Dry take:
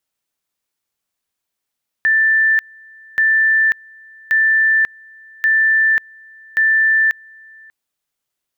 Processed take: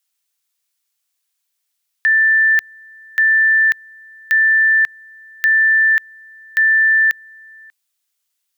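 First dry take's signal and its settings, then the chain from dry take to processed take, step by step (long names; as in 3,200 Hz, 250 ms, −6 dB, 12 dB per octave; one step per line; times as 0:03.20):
tone at two levels in turn 1,770 Hz −10.5 dBFS, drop 28.5 dB, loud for 0.54 s, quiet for 0.59 s, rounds 5
high-pass filter 1,300 Hz 6 dB per octave
high-shelf EQ 2,300 Hz +7.5 dB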